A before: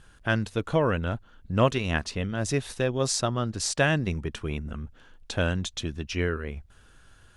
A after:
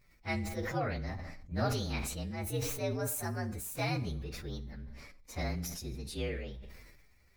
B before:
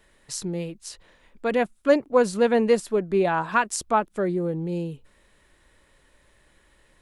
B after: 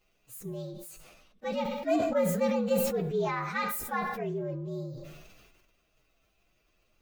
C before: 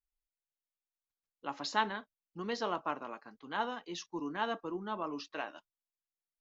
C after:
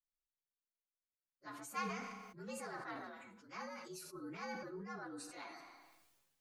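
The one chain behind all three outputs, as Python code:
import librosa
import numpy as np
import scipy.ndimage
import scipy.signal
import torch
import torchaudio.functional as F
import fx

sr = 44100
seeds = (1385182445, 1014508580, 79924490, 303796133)

y = fx.partial_stretch(x, sr, pct=118)
y = fx.rev_schroeder(y, sr, rt60_s=0.62, comb_ms=31, drr_db=15.5)
y = fx.sustainer(y, sr, db_per_s=36.0)
y = y * librosa.db_to_amplitude(-8.0)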